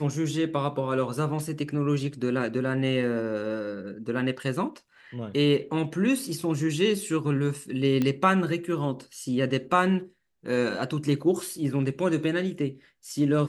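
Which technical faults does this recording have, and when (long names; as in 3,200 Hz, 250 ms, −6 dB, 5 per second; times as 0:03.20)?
0:08.02: click −14 dBFS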